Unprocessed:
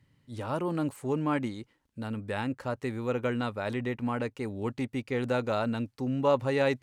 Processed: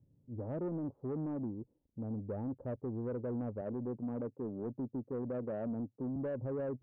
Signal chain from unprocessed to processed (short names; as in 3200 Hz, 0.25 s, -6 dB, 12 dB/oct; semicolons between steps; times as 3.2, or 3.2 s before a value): inverse Chebyshev low-pass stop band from 2700 Hz, stop band 70 dB; limiter -26.5 dBFS, peak gain reduction 8.5 dB; 3.61–6.16 HPF 120 Hz 24 dB/oct; soft clip -29.5 dBFS, distortion -17 dB; gain -2 dB